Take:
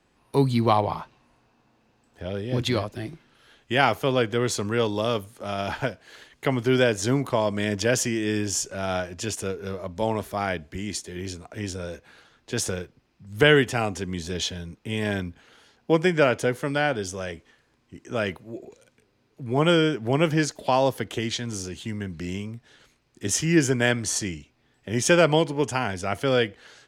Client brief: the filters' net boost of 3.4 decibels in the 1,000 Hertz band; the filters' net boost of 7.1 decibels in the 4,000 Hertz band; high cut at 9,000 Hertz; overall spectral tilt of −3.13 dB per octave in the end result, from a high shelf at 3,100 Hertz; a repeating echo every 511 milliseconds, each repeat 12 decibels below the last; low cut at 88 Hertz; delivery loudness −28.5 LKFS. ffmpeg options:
ffmpeg -i in.wav -af "highpass=88,lowpass=9000,equalizer=frequency=1000:width_type=o:gain=3.5,highshelf=frequency=3100:gain=7.5,equalizer=frequency=4000:width_type=o:gain=4,aecho=1:1:511|1022|1533:0.251|0.0628|0.0157,volume=-6dB" out.wav

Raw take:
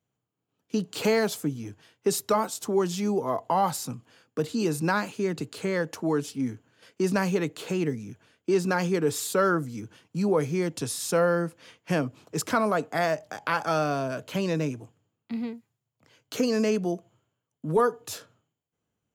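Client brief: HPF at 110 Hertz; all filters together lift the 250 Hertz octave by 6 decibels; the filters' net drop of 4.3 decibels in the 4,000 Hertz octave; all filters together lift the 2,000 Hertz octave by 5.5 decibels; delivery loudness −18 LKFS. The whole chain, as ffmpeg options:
ffmpeg -i in.wav -af "highpass=110,equalizer=frequency=250:width_type=o:gain=8.5,equalizer=frequency=2000:width_type=o:gain=9,equalizer=frequency=4000:width_type=o:gain=-8.5,volume=6dB" out.wav

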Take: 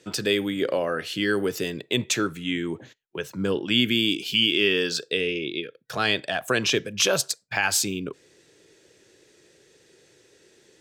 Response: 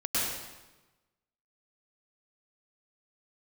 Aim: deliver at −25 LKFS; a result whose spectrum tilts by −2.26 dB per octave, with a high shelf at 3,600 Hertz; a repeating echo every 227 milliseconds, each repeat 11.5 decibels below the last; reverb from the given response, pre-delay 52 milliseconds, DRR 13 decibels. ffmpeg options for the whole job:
-filter_complex "[0:a]highshelf=frequency=3600:gain=3.5,aecho=1:1:227|454|681:0.266|0.0718|0.0194,asplit=2[link_01][link_02];[1:a]atrim=start_sample=2205,adelay=52[link_03];[link_02][link_03]afir=irnorm=-1:irlink=0,volume=-22.5dB[link_04];[link_01][link_04]amix=inputs=2:normalize=0,volume=-2.5dB"

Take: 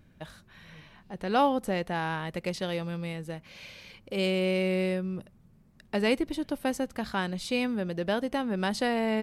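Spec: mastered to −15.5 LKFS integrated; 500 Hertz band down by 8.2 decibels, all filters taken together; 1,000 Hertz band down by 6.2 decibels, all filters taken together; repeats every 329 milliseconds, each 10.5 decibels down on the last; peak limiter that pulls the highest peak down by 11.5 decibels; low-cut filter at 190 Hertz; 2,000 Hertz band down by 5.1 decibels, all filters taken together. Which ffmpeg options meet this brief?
ffmpeg -i in.wav -af "highpass=190,equalizer=frequency=500:width_type=o:gain=-9,equalizer=frequency=1000:width_type=o:gain=-3.5,equalizer=frequency=2000:width_type=o:gain=-5,alimiter=level_in=6dB:limit=-24dB:level=0:latency=1,volume=-6dB,aecho=1:1:329|658|987:0.299|0.0896|0.0269,volume=24dB" out.wav

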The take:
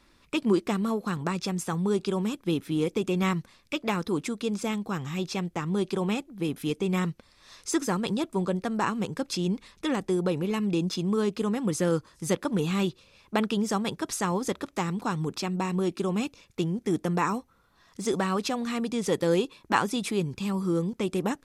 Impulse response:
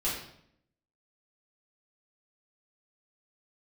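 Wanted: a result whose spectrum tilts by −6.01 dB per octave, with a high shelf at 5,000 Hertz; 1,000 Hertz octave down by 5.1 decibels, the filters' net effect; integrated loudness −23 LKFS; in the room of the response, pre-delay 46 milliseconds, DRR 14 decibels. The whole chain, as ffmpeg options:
-filter_complex "[0:a]equalizer=frequency=1000:width_type=o:gain=-6,highshelf=frequency=5000:gain=-5.5,asplit=2[link_01][link_02];[1:a]atrim=start_sample=2205,adelay=46[link_03];[link_02][link_03]afir=irnorm=-1:irlink=0,volume=-21dB[link_04];[link_01][link_04]amix=inputs=2:normalize=0,volume=6.5dB"

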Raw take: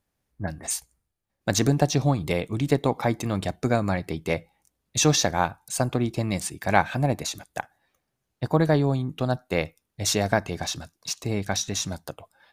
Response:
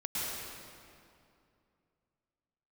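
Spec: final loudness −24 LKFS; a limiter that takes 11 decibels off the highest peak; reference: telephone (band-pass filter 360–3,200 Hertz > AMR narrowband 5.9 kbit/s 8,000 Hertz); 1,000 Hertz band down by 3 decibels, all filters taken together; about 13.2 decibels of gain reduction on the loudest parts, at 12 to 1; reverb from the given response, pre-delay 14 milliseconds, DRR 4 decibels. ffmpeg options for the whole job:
-filter_complex "[0:a]equalizer=frequency=1000:width_type=o:gain=-4,acompressor=threshold=-29dB:ratio=12,alimiter=level_in=3dB:limit=-24dB:level=0:latency=1,volume=-3dB,asplit=2[link_01][link_02];[1:a]atrim=start_sample=2205,adelay=14[link_03];[link_02][link_03]afir=irnorm=-1:irlink=0,volume=-9.5dB[link_04];[link_01][link_04]amix=inputs=2:normalize=0,highpass=360,lowpass=3200,volume=22dB" -ar 8000 -c:a libopencore_amrnb -b:a 5900

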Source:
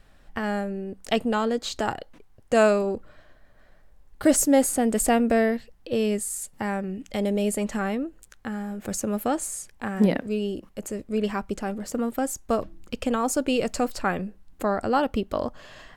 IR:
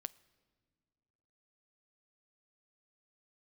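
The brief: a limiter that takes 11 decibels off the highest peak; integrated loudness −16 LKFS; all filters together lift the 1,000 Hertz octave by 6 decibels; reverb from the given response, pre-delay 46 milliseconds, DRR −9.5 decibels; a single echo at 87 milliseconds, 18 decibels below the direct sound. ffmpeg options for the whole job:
-filter_complex "[0:a]equalizer=frequency=1000:width_type=o:gain=8.5,alimiter=limit=-15dB:level=0:latency=1,aecho=1:1:87:0.126,asplit=2[link_01][link_02];[1:a]atrim=start_sample=2205,adelay=46[link_03];[link_02][link_03]afir=irnorm=-1:irlink=0,volume=13dB[link_04];[link_01][link_04]amix=inputs=2:normalize=0,volume=1dB"

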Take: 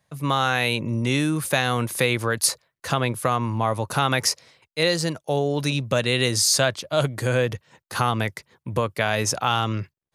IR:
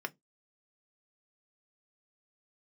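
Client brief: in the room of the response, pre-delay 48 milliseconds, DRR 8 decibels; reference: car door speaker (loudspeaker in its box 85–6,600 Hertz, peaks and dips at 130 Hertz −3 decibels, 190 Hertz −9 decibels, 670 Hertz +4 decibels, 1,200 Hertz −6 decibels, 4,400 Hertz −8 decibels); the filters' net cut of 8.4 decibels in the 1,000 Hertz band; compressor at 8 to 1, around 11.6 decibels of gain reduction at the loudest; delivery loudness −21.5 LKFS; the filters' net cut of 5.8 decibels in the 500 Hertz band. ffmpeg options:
-filter_complex "[0:a]equalizer=frequency=500:width_type=o:gain=-6,equalizer=frequency=1000:width_type=o:gain=-8.5,acompressor=threshold=-28dB:ratio=8,asplit=2[link_01][link_02];[1:a]atrim=start_sample=2205,adelay=48[link_03];[link_02][link_03]afir=irnorm=-1:irlink=0,volume=-10dB[link_04];[link_01][link_04]amix=inputs=2:normalize=0,highpass=85,equalizer=frequency=130:width_type=q:width=4:gain=-3,equalizer=frequency=190:width_type=q:width=4:gain=-9,equalizer=frequency=670:width_type=q:width=4:gain=4,equalizer=frequency=1200:width_type=q:width=4:gain=-6,equalizer=frequency=4400:width_type=q:width=4:gain=-8,lowpass=frequency=6600:width=0.5412,lowpass=frequency=6600:width=1.3066,volume=13.5dB"

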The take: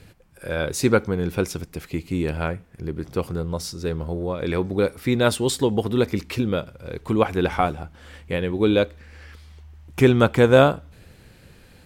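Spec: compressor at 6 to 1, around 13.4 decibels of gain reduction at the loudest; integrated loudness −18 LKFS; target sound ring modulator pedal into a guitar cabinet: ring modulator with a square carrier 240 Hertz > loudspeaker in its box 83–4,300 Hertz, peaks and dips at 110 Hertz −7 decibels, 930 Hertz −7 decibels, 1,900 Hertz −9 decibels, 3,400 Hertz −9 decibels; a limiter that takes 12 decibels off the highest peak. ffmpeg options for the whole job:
ffmpeg -i in.wav -af "acompressor=threshold=-24dB:ratio=6,alimiter=limit=-22.5dB:level=0:latency=1,aeval=exprs='val(0)*sgn(sin(2*PI*240*n/s))':channel_layout=same,highpass=83,equalizer=frequency=110:width_type=q:width=4:gain=-7,equalizer=frequency=930:width_type=q:width=4:gain=-7,equalizer=frequency=1900:width_type=q:width=4:gain=-9,equalizer=frequency=3400:width_type=q:width=4:gain=-9,lowpass=frequency=4300:width=0.5412,lowpass=frequency=4300:width=1.3066,volume=17.5dB" out.wav

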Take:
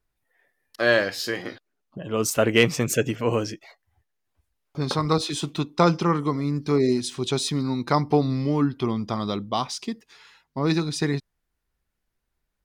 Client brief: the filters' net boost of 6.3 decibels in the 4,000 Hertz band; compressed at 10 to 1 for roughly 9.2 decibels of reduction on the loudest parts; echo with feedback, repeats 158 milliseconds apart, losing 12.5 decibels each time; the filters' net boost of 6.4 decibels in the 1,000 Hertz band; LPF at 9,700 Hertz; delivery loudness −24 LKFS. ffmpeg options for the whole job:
ffmpeg -i in.wav -af "lowpass=9700,equalizer=frequency=1000:width_type=o:gain=7.5,equalizer=frequency=4000:width_type=o:gain=7.5,acompressor=threshold=-19dB:ratio=10,aecho=1:1:158|316|474:0.237|0.0569|0.0137,volume=1.5dB" out.wav

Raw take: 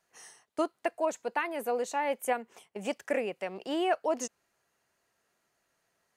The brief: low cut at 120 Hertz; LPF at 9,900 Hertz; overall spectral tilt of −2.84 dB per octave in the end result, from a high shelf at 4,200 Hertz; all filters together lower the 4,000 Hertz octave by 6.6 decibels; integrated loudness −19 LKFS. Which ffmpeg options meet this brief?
ffmpeg -i in.wav -af "highpass=120,lowpass=9900,equalizer=frequency=4000:width_type=o:gain=-6.5,highshelf=frequency=4200:gain=-7.5,volume=14.5dB" out.wav

